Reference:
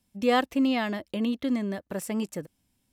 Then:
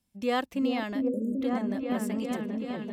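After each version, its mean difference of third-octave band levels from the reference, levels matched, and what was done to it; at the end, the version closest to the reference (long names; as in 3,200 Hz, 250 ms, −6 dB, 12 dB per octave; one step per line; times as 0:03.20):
5.5 dB: echo whose low-pass opens from repeat to repeat 393 ms, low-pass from 400 Hz, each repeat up 1 octave, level 0 dB
time-frequency box erased 0:01.08–0:01.41, 610–6,300 Hz
level −5 dB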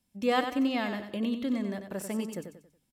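3.5 dB: mains-hum notches 50/100/150 Hz
repeating echo 93 ms, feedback 37%, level −8 dB
level −3.5 dB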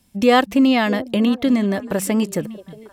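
2.0 dB: in parallel at 0 dB: downward compressor, threshold −32 dBFS, peak gain reduction 13 dB
on the sum: echo through a band-pass that steps 315 ms, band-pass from 160 Hz, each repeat 1.4 octaves, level −12 dB
level +7 dB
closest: third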